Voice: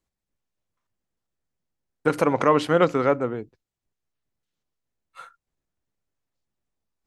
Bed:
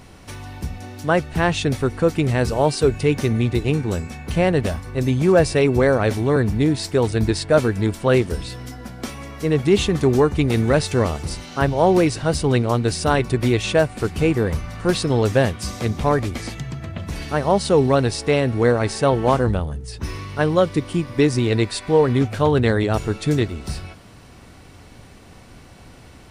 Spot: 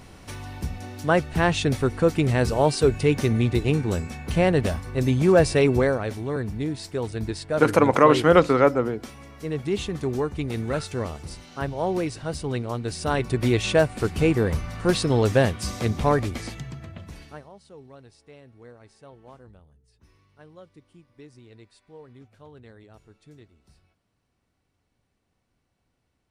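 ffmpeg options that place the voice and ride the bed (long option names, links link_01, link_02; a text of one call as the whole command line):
ffmpeg -i stem1.wav -i stem2.wav -filter_complex "[0:a]adelay=5550,volume=3dB[link_01];[1:a]volume=6dB,afade=type=out:start_time=5.71:duration=0.32:silence=0.398107,afade=type=in:start_time=12.83:duration=0.79:silence=0.398107,afade=type=out:start_time=16.09:duration=1.41:silence=0.0375837[link_02];[link_01][link_02]amix=inputs=2:normalize=0" out.wav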